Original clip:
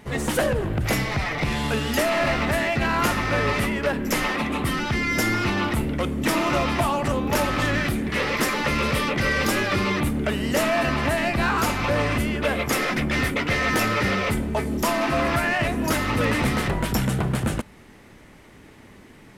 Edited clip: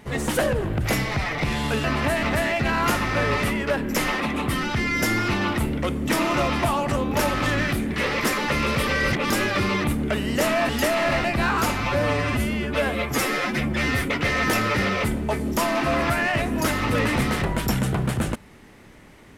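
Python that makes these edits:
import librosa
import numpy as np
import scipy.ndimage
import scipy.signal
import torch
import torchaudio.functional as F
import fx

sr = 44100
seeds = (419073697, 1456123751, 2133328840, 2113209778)

y = fx.edit(x, sr, fx.swap(start_s=1.84, length_s=0.55, other_s=10.85, other_length_s=0.39),
    fx.reverse_span(start_s=9.03, length_s=0.43),
    fx.stretch_span(start_s=11.8, length_s=1.48, factor=1.5), tone=tone)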